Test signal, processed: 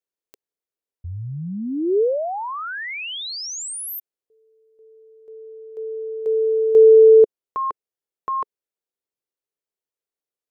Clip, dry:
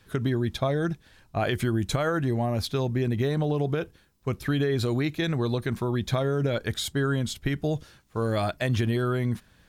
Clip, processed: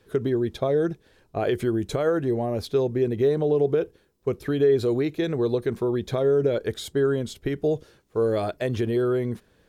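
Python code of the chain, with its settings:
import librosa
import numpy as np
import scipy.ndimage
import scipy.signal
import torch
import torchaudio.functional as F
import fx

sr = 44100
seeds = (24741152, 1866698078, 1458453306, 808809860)

y = fx.peak_eq(x, sr, hz=430.0, db=14.0, octaves=1.0)
y = y * librosa.db_to_amplitude(-5.0)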